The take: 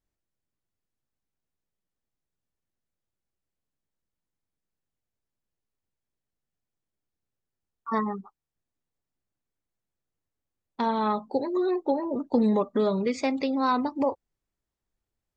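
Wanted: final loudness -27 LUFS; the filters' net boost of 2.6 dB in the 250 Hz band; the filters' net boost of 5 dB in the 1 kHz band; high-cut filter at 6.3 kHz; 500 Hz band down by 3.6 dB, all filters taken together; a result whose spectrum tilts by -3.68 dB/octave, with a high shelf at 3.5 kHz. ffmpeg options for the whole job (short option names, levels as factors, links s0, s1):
-af "lowpass=6300,equalizer=f=250:t=o:g=4.5,equalizer=f=500:t=o:g=-8,equalizer=f=1000:t=o:g=8,highshelf=f=3500:g=-5.5,volume=0.794"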